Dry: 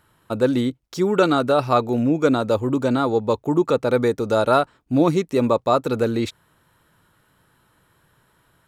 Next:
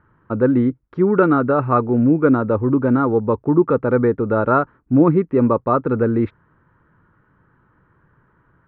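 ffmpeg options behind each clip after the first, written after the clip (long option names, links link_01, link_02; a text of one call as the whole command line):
ffmpeg -i in.wav -af "lowpass=frequency=1600:width=0.5412,lowpass=frequency=1600:width=1.3066,equalizer=frequency=690:width_type=o:width=0.88:gain=-9,volume=5.5dB" out.wav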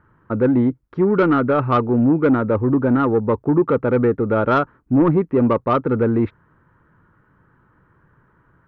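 ffmpeg -i in.wav -af "acontrast=82,volume=-6dB" out.wav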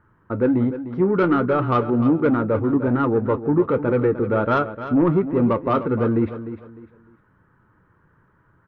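ffmpeg -i in.wav -filter_complex "[0:a]flanger=delay=9.1:depth=2.4:regen=-58:speed=1.3:shape=sinusoidal,asplit=2[link_01][link_02];[link_02]aecho=0:1:302|604|906:0.251|0.0728|0.0211[link_03];[link_01][link_03]amix=inputs=2:normalize=0,volume=1.5dB" out.wav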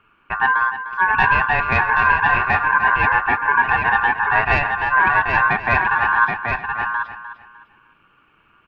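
ffmpeg -i in.wav -af "aecho=1:1:779:0.596,aeval=exprs='val(0)*sin(2*PI*1300*n/s)':channel_layout=same,volume=4dB" out.wav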